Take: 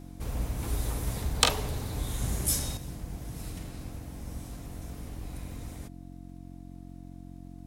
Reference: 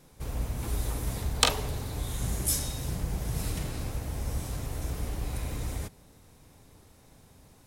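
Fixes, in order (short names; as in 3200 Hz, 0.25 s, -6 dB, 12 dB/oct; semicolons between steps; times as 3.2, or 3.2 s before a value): de-click; de-hum 45.1 Hz, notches 7; notch 700 Hz, Q 30; gain 0 dB, from 2.77 s +8 dB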